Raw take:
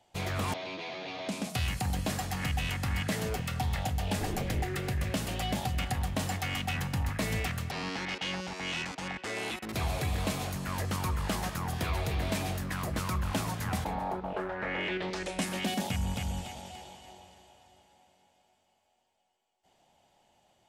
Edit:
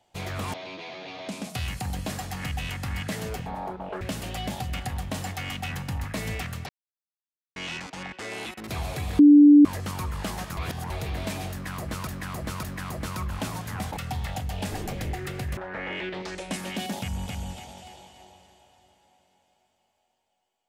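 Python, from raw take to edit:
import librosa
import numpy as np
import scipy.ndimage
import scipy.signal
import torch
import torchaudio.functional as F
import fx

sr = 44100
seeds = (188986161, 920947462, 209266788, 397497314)

y = fx.edit(x, sr, fx.swap(start_s=3.46, length_s=1.6, other_s=13.9, other_length_s=0.55),
    fx.silence(start_s=7.74, length_s=0.87),
    fx.bleep(start_s=10.24, length_s=0.46, hz=292.0, db=-9.0),
    fx.reverse_span(start_s=11.62, length_s=0.33),
    fx.repeat(start_s=12.56, length_s=0.56, count=3), tone=tone)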